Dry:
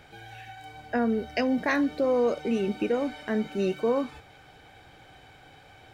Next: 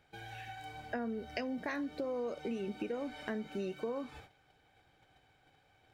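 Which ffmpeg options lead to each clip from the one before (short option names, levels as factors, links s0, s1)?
-af "agate=range=0.2:threshold=0.00355:ratio=16:detection=peak,acompressor=threshold=0.0224:ratio=6,volume=0.75"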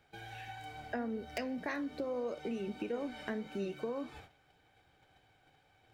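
-filter_complex "[0:a]acrossover=split=430|2200[s0][s1][s2];[s2]aeval=exprs='(mod(35.5*val(0)+1,2)-1)/35.5':c=same[s3];[s0][s1][s3]amix=inputs=3:normalize=0,flanger=delay=8.2:depth=6.7:regen=82:speed=1.7:shape=triangular,volume=1.68"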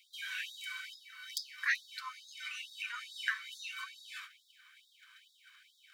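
-af "afftfilt=real='re*gte(b*sr/1024,950*pow(3400/950,0.5+0.5*sin(2*PI*2.3*pts/sr)))':imag='im*gte(b*sr/1024,950*pow(3400/950,0.5+0.5*sin(2*PI*2.3*pts/sr)))':win_size=1024:overlap=0.75,volume=3.98"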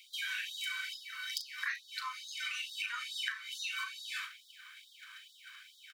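-filter_complex "[0:a]acompressor=threshold=0.00708:ratio=6,asplit=2[s0][s1];[s1]adelay=38,volume=0.335[s2];[s0][s2]amix=inputs=2:normalize=0,volume=2.37"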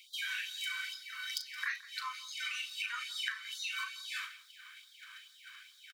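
-af "aecho=1:1:170:0.112"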